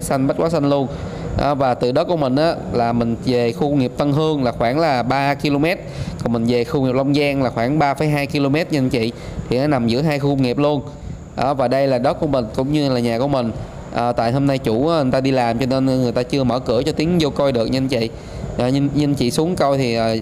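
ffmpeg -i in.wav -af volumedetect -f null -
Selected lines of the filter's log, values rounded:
mean_volume: -17.8 dB
max_volume: -5.4 dB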